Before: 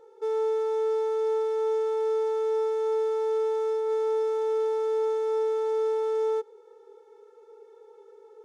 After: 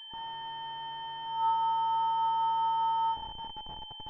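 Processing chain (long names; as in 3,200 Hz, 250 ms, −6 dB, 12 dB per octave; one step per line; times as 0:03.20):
tuned comb filter 420 Hz, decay 0.6 s, mix 100%
rectangular room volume 3,400 cubic metres, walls mixed, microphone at 6.3 metres
high-pass filter sweep 850 Hz → 360 Hz, 0:02.54–0:03.15
on a send: feedback echo with a high-pass in the loop 101 ms, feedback 49%, high-pass 770 Hz, level −6.5 dB
on the sum: change of speed 2.06×
in parallel at −11.5 dB: comparator with hysteresis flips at −45 dBFS
on the sum: upward compression, threshold −41 dBFS
switching amplifier with a slow clock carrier 3,100 Hz
level −2 dB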